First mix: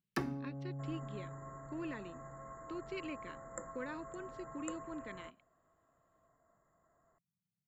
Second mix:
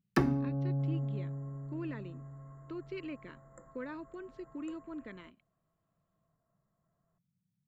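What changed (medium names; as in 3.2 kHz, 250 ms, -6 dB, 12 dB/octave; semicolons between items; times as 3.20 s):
first sound +7.0 dB; second sound -10.5 dB; master: add tilt EQ -1.5 dB/octave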